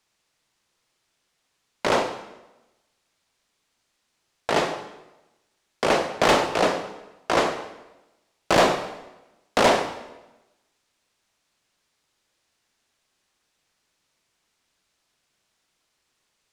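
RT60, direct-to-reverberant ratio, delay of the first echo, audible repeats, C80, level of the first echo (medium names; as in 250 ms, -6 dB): 1.0 s, 7.5 dB, no echo, no echo, 11.0 dB, no echo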